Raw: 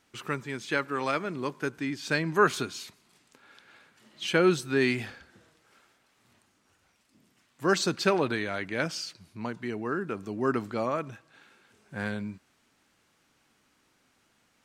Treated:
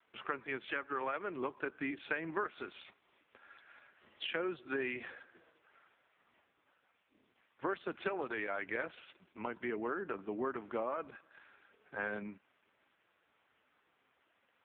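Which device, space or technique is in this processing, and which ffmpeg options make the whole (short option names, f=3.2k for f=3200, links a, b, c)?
voicemail: -af "highpass=360,lowpass=3.2k,lowpass=f=7.6k:w=0.5412,lowpass=f=7.6k:w=1.3066,acompressor=threshold=-34dB:ratio=12,volume=2dB" -ar 8000 -c:a libopencore_amrnb -b:a 4750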